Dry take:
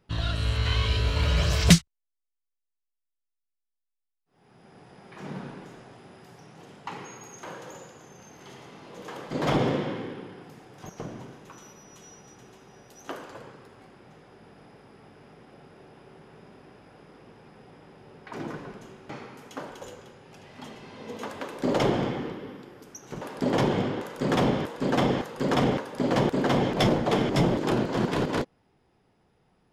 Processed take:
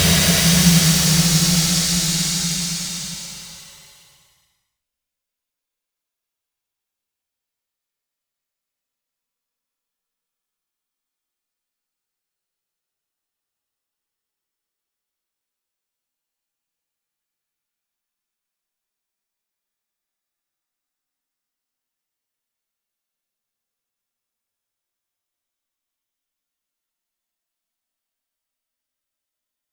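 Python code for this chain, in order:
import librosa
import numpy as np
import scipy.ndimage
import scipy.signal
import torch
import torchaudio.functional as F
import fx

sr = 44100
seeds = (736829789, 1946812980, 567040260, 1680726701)

y = fx.high_shelf(x, sr, hz=2100.0, db=9.0)
y = fx.leveller(y, sr, passes=5)
y = fx.quant_dither(y, sr, seeds[0], bits=12, dither='triangular')
y = fx.paulstretch(y, sr, seeds[1], factor=33.0, window_s=0.1, from_s=1.71)
y = y * 10.0 ** (-12.5 / 20.0)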